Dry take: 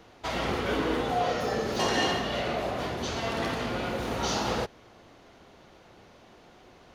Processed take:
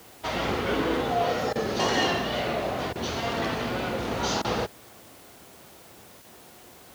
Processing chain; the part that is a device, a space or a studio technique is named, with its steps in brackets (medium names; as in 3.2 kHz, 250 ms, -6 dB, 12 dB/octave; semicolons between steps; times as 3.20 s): worn cassette (low-pass 7.9 kHz; wow and flutter; level dips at 1.53/2.93/4.42/6.22 s, 24 ms -19 dB; white noise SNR 24 dB); high-pass 57 Hz; trim +2 dB